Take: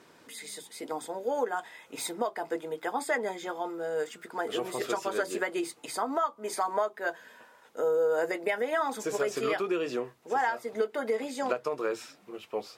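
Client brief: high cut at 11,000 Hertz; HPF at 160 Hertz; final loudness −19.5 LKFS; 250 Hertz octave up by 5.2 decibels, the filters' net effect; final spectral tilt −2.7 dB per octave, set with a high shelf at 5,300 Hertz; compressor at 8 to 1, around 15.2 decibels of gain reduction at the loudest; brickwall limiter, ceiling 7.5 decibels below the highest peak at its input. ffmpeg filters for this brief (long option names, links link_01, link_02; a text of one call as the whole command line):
ffmpeg -i in.wav -af "highpass=160,lowpass=11000,equalizer=frequency=250:width_type=o:gain=8,highshelf=frequency=5300:gain=5,acompressor=threshold=-38dB:ratio=8,volume=24.5dB,alimiter=limit=-10dB:level=0:latency=1" out.wav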